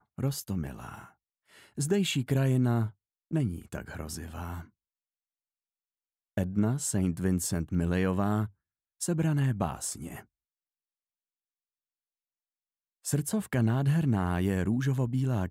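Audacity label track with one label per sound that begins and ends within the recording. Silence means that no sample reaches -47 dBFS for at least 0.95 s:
6.370000	10.220000	sound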